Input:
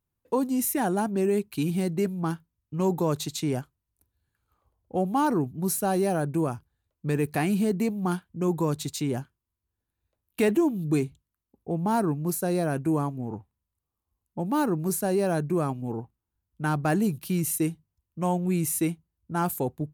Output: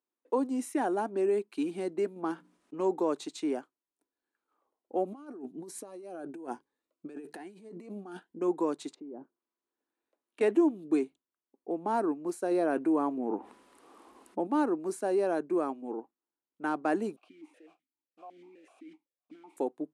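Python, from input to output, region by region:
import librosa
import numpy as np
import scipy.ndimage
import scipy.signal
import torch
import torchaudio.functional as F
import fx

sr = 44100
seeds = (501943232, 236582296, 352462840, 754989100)

y = fx.chain(x, sr, fx.hum_notches(base_hz=60, count=5),
    fx.env_flatten(amount_pct=50), at=(2.16, 2.8))
y = fx.chain(y, sr, fx.over_compress(threshold_db=-31.0, ratio=-0.5),
    fx.notch_cascade(direction='rising', hz=1.1), at=(5.05, 8.39))
y = fx.chain(y, sr, fx.over_compress(threshold_db=-35.0, ratio=-1.0),
    fx.env_lowpass_down(base_hz=570.0, full_db=-34.0), at=(8.9, 10.41))
y = fx.chain(y, sr, fx.peak_eq(hz=6800.0, db=-4.5, octaves=1.0),
    fx.env_flatten(amount_pct=70), at=(12.51, 14.47))
y = fx.chain(y, sr, fx.over_compress(threshold_db=-32.0, ratio=-1.0),
    fx.mod_noise(seeds[0], snr_db=11),
    fx.vowel_held(hz=7.9), at=(17.16, 19.57))
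y = scipy.signal.sosfilt(scipy.signal.ellip(3, 1.0, 40, [290.0, 9400.0], 'bandpass', fs=sr, output='sos'), y)
y = fx.high_shelf(y, sr, hz=2200.0, db=-11.0)
y = y * librosa.db_to_amplitude(-1.0)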